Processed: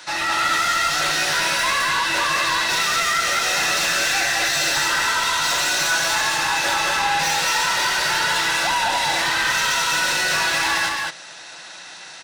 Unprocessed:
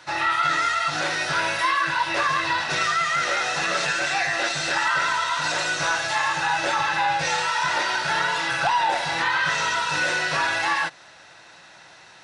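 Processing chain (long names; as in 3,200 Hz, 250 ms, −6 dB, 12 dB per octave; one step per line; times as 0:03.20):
high-pass filter 140 Hz 24 dB per octave
high-shelf EQ 2,900 Hz +11 dB
soft clipping −22 dBFS, distortion −10 dB
on a send: loudspeakers that aren't time-aligned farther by 24 metres −9 dB, 73 metres −2 dB
on the sum: level +2.5 dB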